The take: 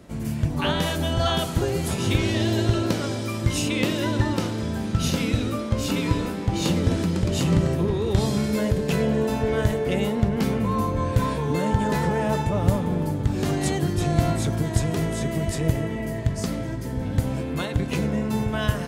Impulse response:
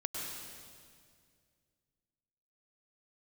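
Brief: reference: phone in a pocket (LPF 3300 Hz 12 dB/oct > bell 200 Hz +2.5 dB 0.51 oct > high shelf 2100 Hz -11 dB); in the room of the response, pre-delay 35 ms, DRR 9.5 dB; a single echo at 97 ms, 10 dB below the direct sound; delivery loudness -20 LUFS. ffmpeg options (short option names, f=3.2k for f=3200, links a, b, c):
-filter_complex "[0:a]aecho=1:1:97:0.316,asplit=2[a][b];[1:a]atrim=start_sample=2205,adelay=35[c];[b][c]afir=irnorm=-1:irlink=0,volume=-12dB[d];[a][d]amix=inputs=2:normalize=0,lowpass=3.3k,equalizer=f=200:t=o:w=0.51:g=2.5,highshelf=f=2.1k:g=-11,volume=3dB"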